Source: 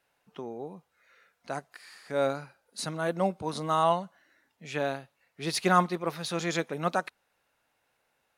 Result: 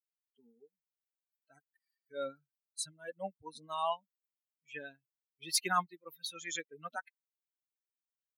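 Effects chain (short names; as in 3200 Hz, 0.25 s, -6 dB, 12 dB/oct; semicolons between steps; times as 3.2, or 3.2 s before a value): per-bin expansion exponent 3; tilt +3.5 dB/oct; gain -5 dB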